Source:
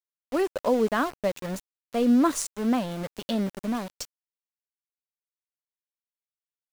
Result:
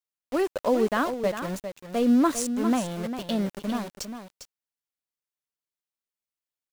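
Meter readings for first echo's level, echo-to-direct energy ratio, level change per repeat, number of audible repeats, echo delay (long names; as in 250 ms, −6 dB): −9.5 dB, −9.5 dB, repeats not evenly spaced, 1, 402 ms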